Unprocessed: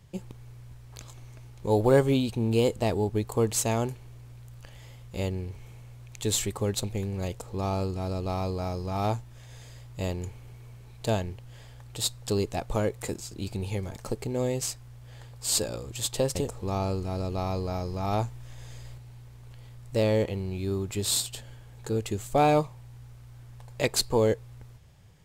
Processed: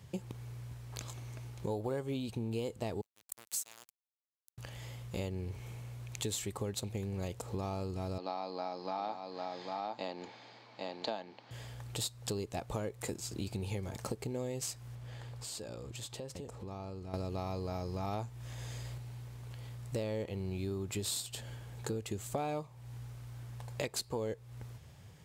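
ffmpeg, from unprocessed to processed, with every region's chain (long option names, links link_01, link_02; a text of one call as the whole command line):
ffmpeg -i in.wav -filter_complex "[0:a]asettb=1/sr,asplit=3[link_01][link_02][link_03];[link_01]atrim=end=3.014[link_04];[link_02]atrim=start=3.01:end=4.58,asetpts=PTS-STARTPTS,afade=type=in:duration=0.004:curve=qsin,afade=type=out:start_time=1.566:duration=0.004:curve=qsin,highpass=frequency=140:poles=1,aderivative,aeval=exprs='sgn(val(0))*max(abs(val(0))-0.00891,0)':channel_layout=same[link_05];[link_03]atrim=start=4.576[link_06];[link_04][link_05]acrossfade=duration=0.004:curve1=hsin:curve2=qsin[link_07];[link_07][link_06]acrossfade=duration=0.004:curve1=qsin:curve2=hsin,asettb=1/sr,asplit=3[link_08][link_09][link_10];[link_08]atrim=end=8.184[link_11];[link_09]atrim=start=8.18:end=11.51,asetpts=PTS-STARTPTS,afade=type=in:duration=0.004:curve=qsin,afade=type=out:start_time=3.326:duration=0.004:curve=qsin,highpass=frequency=250:width=0.5412,highpass=frequency=250:width=1.3066,equalizer=frequency=400:width_type=q:width=4:gain=-10,equalizer=frequency=810:width_type=q:width=4:gain=6,equalizer=frequency=2800:width_type=q:width=4:gain=-3,equalizer=frequency=4400:width_type=q:width=4:gain=7,lowpass=frequency=4600:width=0.5412,lowpass=frequency=4600:width=1.3066,aecho=1:1:801:0.473,atrim=end_sample=146853[link_12];[link_10]atrim=start=11.506[link_13];[link_11][link_12]acrossfade=duration=0.004:curve1=hsin:curve2=qsin[link_14];[link_14][link_13]acrossfade=duration=0.004:curve1=qsin:curve2=hsin,asettb=1/sr,asplit=3[link_15][link_16][link_17];[link_15]atrim=end=14.954[link_18];[link_16]atrim=start=14.95:end=17.14,asetpts=PTS-STARTPTS,afade=type=in:duration=0.004:curve=qsin,afade=type=out:start_time=2.186:duration=0.004:curve=qsin,highshelf=frequency=7200:gain=-8,acompressor=threshold=-43dB:ratio=6:attack=3.2:release=140:knee=1:detection=peak[link_19];[link_17]atrim=start=17.136[link_20];[link_18][link_19]acrossfade=duration=0.004:curve1=hsin:curve2=qsin[link_21];[link_21][link_20]acrossfade=duration=0.004:curve1=qsin:curve2=hsin,highpass=69,acompressor=threshold=-37dB:ratio=6,volume=2dB" out.wav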